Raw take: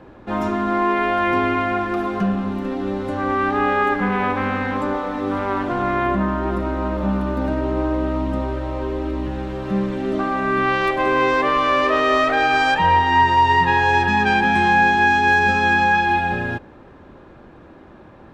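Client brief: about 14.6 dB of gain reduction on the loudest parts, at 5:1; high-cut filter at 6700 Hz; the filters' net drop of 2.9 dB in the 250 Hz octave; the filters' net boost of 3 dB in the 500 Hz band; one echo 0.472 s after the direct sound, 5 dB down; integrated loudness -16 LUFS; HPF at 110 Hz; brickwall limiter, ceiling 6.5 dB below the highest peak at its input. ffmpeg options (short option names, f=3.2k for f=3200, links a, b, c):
-af "highpass=110,lowpass=6.7k,equalizer=f=250:t=o:g=-6,equalizer=f=500:t=o:g=6,acompressor=threshold=-28dB:ratio=5,alimiter=limit=-24dB:level=0:latency=1,aecho=1:1:472:0.562,volume=15dB"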